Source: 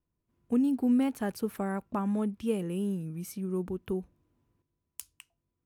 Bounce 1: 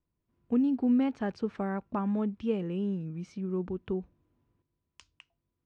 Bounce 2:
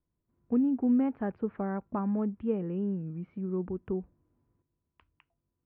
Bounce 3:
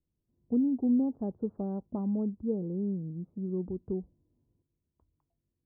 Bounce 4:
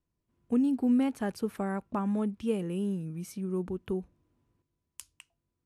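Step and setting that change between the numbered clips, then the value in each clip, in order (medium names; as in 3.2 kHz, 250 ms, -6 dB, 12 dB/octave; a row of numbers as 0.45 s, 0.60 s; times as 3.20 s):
Bessel low-pass, frequency: 3.7 kHz, 1.4 kHz, 500 Hz, 9.5 kHz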